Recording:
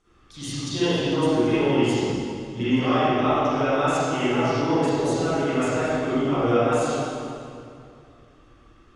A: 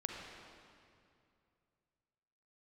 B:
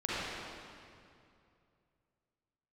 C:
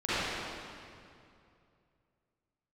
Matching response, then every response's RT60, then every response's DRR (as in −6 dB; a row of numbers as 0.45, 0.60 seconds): C; 2.5, 2.5, 2.5 seconds; 0.5, −9.5, −15.5 decibels